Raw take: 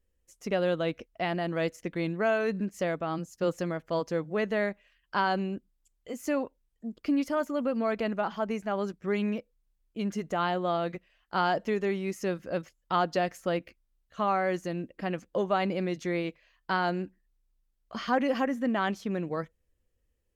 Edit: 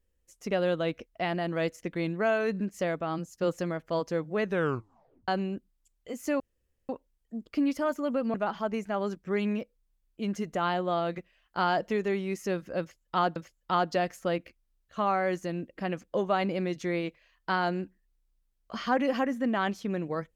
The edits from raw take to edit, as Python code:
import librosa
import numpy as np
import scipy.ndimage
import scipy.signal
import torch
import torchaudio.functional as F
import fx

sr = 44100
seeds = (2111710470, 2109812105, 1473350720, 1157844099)

y = fx.edit(x, sr, fx.tape_stop(start_s=4.44, length_s=0.84),
    fx.insert_room_tone(at_s=6.4, length_s=0.49),
    fx.cut(start_s=7.85, length_s=0.26),
    fx.repeat(start_s=12.57, length_s=0.56, count=2), tone=tone)